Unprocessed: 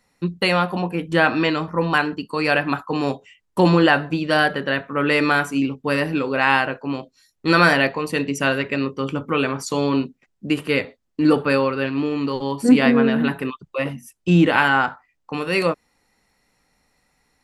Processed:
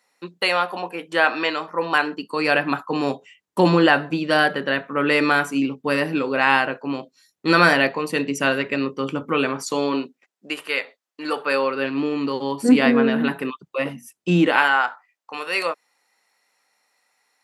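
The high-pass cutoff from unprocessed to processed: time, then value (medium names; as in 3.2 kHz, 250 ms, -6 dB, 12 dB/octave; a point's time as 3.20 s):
1.65 s 490 Hz
2.62 s 170 Hz
9.47 s 170 Hz
10.63 s 710 Hz
11.35 s 710 Hz
11.95 s 190 Hz
14.35 s 190 Hz
14.79 s 640 Hz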